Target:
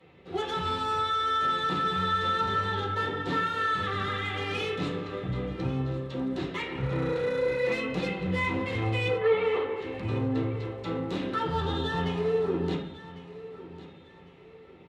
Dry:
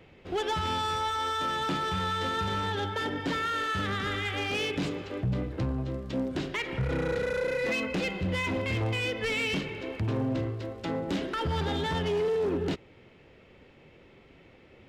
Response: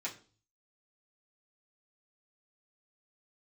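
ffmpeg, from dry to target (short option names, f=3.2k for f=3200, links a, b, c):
-filter_complex "[0:a]asettb=1/sr,asplit=3[a][b][c];[a]atrim=end=9.084[d];[b]atrim=start=9.08:end=9.8,asetpts=PTS-STARTPTS,afade=t=in:d=0.004:c=qsin,afade=t=out:st=0.716:d=0.004:c=qsin,highpass=f=350:w=0.5412,highpass=f=350:w=1.3066,equalizer=f=450:t=q:w=4:g=10,equalizer=f=830:t=q:w=4:g=7,equalizer=f=1.2k:t=q:w=4:g=9,equalizer=f=2.6k:t=q:w=4:g=-9,lowpass=f=3.1k:w=0.5412,lowpass=f=3.1k:w=1.3066[e];[c]atrim=start=9.796[f];[d][e]acrossfade=d=0.004:c1=hsin:c2=qsin[g];[g][f]acrossfade=d=0.004:c1=qsin:c2=hsin,asettb=1/sr,asplit=3[h][i][j];[h]atrim=end=11.474[k];[i]atrim=start=11.47:end=11.96,asetpts=PTS-STARTPTS,afade=t=in:d=0.004:c=qsin,afade=t=out:st=0.486:d=0.004:c=qsin,asuperstop=centerf=2200:order=4:qfactor=4.3[l];[j]atrim=start=11.956[m];[k][l]acrossfade=d=0.004:c1=hsin:c2=qsin[n];[n][m]acrossfade=d=0.004:c1=qsin:c2=hsin,aecho=1:1:1101|2202|3303:0.158|0.0523|0.0173[o];[1:a]atrim=start_sample=2205,asetrate=23373,aresample=44100[p];[o][p]afir=irnorm=-1:irlink=0,volume=-6dB"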